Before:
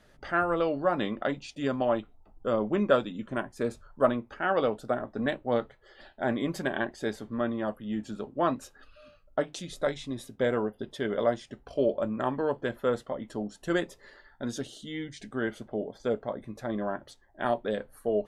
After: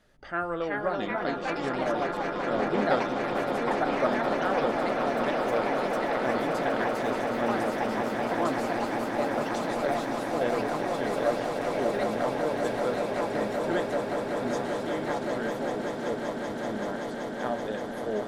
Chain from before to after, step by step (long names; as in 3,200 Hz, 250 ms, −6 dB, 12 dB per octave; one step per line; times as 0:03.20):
mains-hum notches 60/120 Hz
delay with pitch and tempo change per echo 426 ms, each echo +3 semitones, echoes 3
echo that builds up and dies away 191 ms, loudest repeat 8, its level −9.5 dB
level −4 dB